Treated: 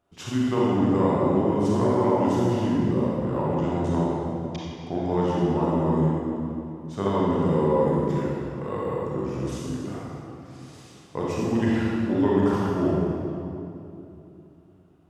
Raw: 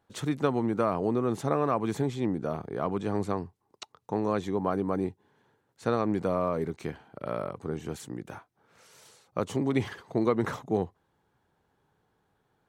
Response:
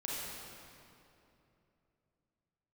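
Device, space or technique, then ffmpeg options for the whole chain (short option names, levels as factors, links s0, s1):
slowed and reverbed: -filter_complex "[0:a]asetrate=37044,aresample=44100[s0];[1:a]atrim=start_sample=2205[s1];[s0][s1]afir=irnorm=-1:irlink=0,volume=1.33"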